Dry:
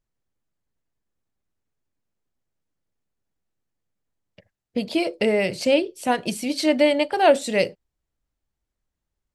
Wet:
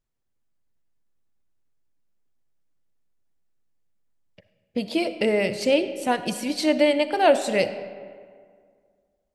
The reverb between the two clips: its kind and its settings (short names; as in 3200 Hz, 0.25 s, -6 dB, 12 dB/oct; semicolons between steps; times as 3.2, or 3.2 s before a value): digital reverb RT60 2 s, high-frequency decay 0.55×, pre-delay 20 ms, DRR 11.5 dB; gain -1.5 dB